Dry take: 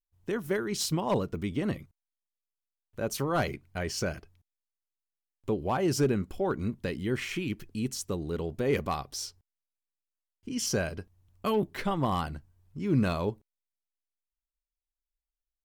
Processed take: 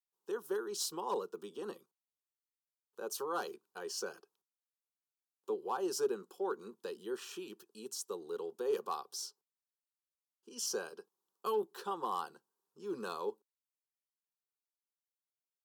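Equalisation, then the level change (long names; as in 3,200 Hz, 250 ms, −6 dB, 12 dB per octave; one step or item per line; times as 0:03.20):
high-pass filter 330 Hz 24 dB per octave
phaser with its sweep stopped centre 420 Hz, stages 8
notch filter 2,200 Hz, Q 22
−4.0 dB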